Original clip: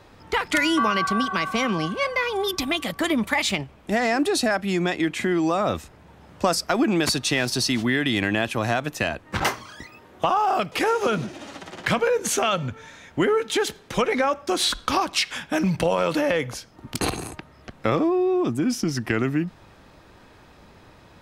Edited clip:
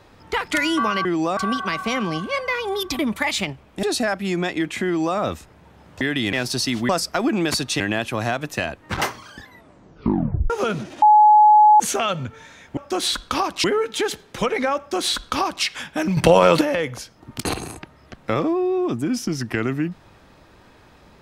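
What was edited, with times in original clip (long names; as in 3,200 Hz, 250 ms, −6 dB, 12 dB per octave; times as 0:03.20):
0:02.67–0:03.10: remove
0:03.94–0:04.26: remove
0:05.29–0:05.61: duplicate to 0:01.05
0:06.44–0:07.35: swap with 0:07.91–0:08.23
0:09.70: tape stop 1.23 s
0:11.45–0:12.23: beep over 847 Hz −8 dBFS
0:14.34–0:15.21: duplicate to 0:13.20
0:15.73–0:16.17: clip gain +8.5 dB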